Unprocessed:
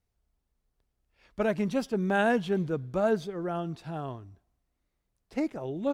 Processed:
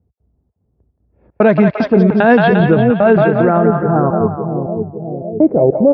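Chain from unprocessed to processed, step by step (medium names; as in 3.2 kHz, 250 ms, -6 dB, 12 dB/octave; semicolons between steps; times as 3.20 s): distance through air 400 m; level-controlled noise filter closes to 400 Hz, open at -21 dBFS; trance gate "x.xxx.xx" 150 bpm -60 dB; high-pass 62 Hz 24 dB/octave; band-stop 3 kHz, Q 12; on a send: two-band feedback delay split 550 Hz, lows 559 ms, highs 174 ms, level -6 dB; on the sum: low-pass sweep 5.6 kHz -> 570 Hz, 2.15–5.45 s; loudness maximiser +23 dB; trim -1 dB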